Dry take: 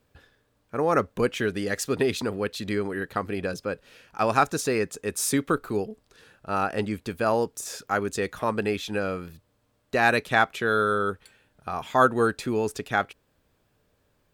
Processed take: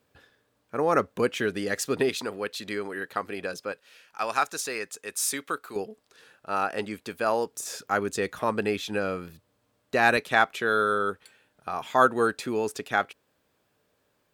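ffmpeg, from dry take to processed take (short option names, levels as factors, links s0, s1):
-af "asetnsamples=n=441:p=0,asendcmd='2.09 highpass f 530;3.72 highpass f 1300;5.76 highpass f 430;7.51 highpass f 130;10.17 highpass f 270',highpass=f=180:p=1"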